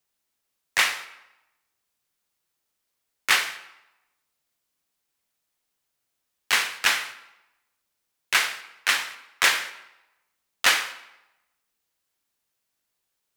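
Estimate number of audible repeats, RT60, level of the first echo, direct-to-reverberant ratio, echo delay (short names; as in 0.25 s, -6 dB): none, 0.95 s, none, 11.5 dB, none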